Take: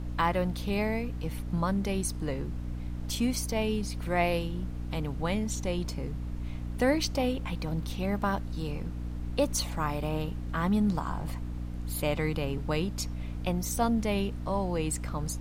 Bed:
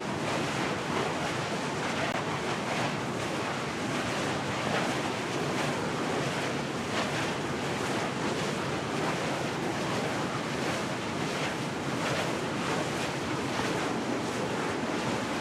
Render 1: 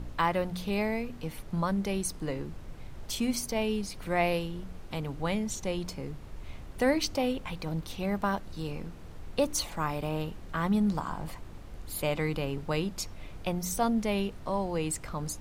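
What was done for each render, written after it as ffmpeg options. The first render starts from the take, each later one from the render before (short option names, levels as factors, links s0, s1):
-af "bandreject=f=60:t=h:w=4,bandreject=f=120:t=h:w=4,bandreject=f=180:t=h:w=4,bandreject=f=240:t=h:w=4,bandreject=f=300:t=h:w=4"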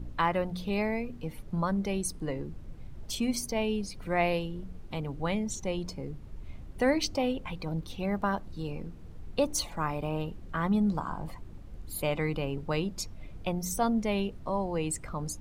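-af "afftdn=nr=9:nf=-45"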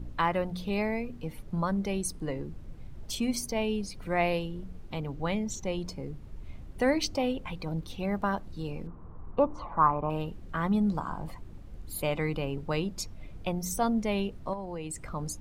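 -filter_complex "[0:a]asettb=1/sr,asplit=3[s0][s1][s2];[s0]atrim=end=4.904[s3];[s1]atrim=start=4.9:end=5.72,asetpts=PTS-STARTPTS,afade=t=in:d=0.004:c=qsin,afade=t=out:st=0.816:d=0.004:c=qsin,equalizer=f=9400:w=6.4:g=-13.5[s4];[s2]atrim=start=5.716[s5];[s3][s4]acrossfade=d=0.004:c1=hsin:c2=qsin[s6];[s6][s5]acrossfade=d=0.004:c1=qsin:c2=hsin,asettb=1/sr,asplit=3[s7][s8][s9];[s7]atrim=end=8.874[s10];[s8]atrim=start=8.87:end=10.1,asetpts=PTS-STARTPTS,afade=t=in:d=0.004:c=qsin,afade=t=out:st=1.226:d=0.004:c=qsin,lowpass=f=1100:t=q:w=4.7[s11];[s9]atrim=start=10.096[s12];[s10][s11]acrossfade=d=0.004:c1=hsin:c2=qsin[s13];[s13][s12]acrossfade=d=0.004:c1=qsin:c2=hsin,asettb=1/sr,asplit=3[s14][s15][s16];[s14]atrim=end=14.534[s17];[s15]atrim=start=14.53:end=15.06,asetpts=PTS-STARTPTS,afade=t=in:d=0.004:c=qsin,afade=t=out:st=0.526:d=0.004:c=qsin,acompressor=threshold=0.0224:ratio=6:attack=3.2:release=140:knee=1:detection=peak[s18];[s16]atrim=start=15.056[s19];[s17][s18]acrossfade=d=0.004:c1=hsin:c2=qsin[s20];[s20][s19]acrossfade=d=0.004:c1=qsin:c2=hsin"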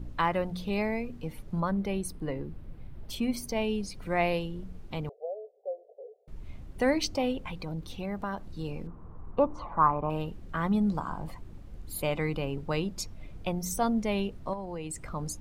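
-filter_complex "[0:a]asettb=1/sr,asplit=3[s0][s1][s2];[s0]atrim=end=1.604[s3];[s1]atrim=start=1.6:end=3.47,asetpts=PTS-STARTPTS,afade=t=in:d=0.004:c=qsin,afade=t=out:st=1.866:d=0.004:c=qsin,equalizer=f=6700:w=1.1:g=-9.5[s4];[s2]atrim=start=3.466[s5];[s3][s4]acrossfade=d=0.004:c1=hsin:c2=qsin[s6];[s6][s5]acrossfade=d=0.004:c1=qsin:c2=hsin,asettb=1/sr,asplit=3[s7][s8][s9];[s7]atrim=end=5.094[s10];[s8]atrim=start=5.09:end=6.28,asetpts=PTS-STARTPTS,afade=t=in:d=0.004:c=qsin,afade=t=out:st=1.186:d=0.004:c=qsin,asuperpass=centerf=560:order=12:qfactor=1.8[s11];[s9]atrim=start=6.276[s12];[s10][s11]acrossfade=d=0.004:c1=hsin:c2=qsin[s13];[s13][s12]acrossfade=d=0.004:c1=qsin:c2=hsin,asettb=1/sr,asplit=3[s14][s15][s16];[s14]atrim=end=7.484[s17];[s15]atrim=start=7.48:end=8.52,asetpts=PTS-STARTPTS,afade=t=in:d=0.004:c=qsin,afade=t=out:st=1.036:d=0.004:c=qsin,acompressor=threshold=0.0224:ratio=2:attack=3.2:release=140:knee=1:detection=peak[s18];[s16]atrim=start=8.516[s19];[s17][s18]acrossfade=d=0.004:c1=hsin:c2=qsin[s20];[s20][s19]acrossfade=d=0.004:c1=qsin:c2=hsin"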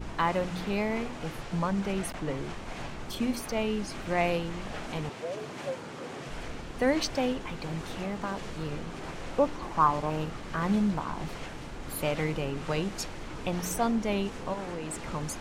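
-filter_complex "[1:a]volume=0.299[s0];[0:a][s0]amix=inputs=2:normalize=0"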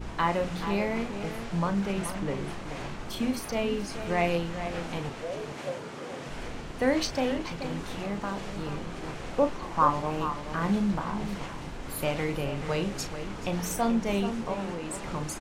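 -filter_complex "[0:a]asplit=2[s0][s1];[s1]adelay=35,volume=0.355[s2];[s0][s2]amix=inputs=2:normalize=0,asplit=2[s3][s4];[s4]adelay=431.5,volume=0.355,highshelf=f=4000:g=-9.71[s5];[s3][s5]amix=inputs=2:normalize=0"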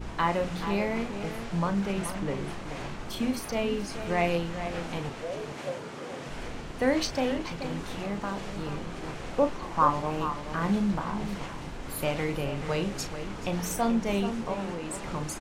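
-af anull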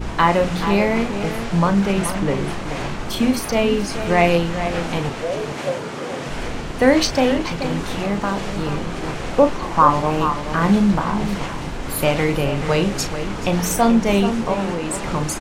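-af "volume=3.55,alimiter=limit=0.794:level=0:latency=1"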